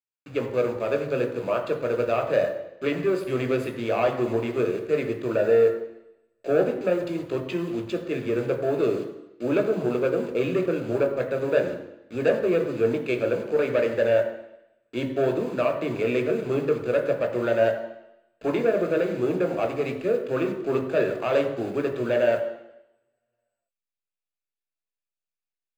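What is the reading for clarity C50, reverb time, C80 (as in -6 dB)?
9.0 dB, 0.85 s, 11.0 dB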